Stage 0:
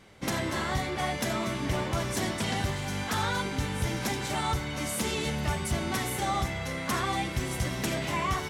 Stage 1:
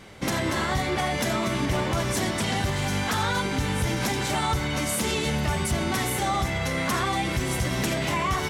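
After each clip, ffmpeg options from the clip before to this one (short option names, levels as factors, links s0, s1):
-af "alimiter=level_in=1.19:limit=0.0631:level=0:latency=1:release=119,volume=0.841,volume=2.66"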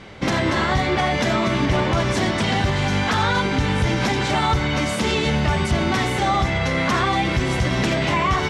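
-af "lowpass=4800,volume=2"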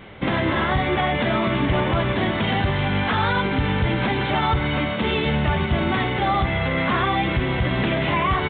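-af "aresample=8000,aresample=44100,volume=0.891"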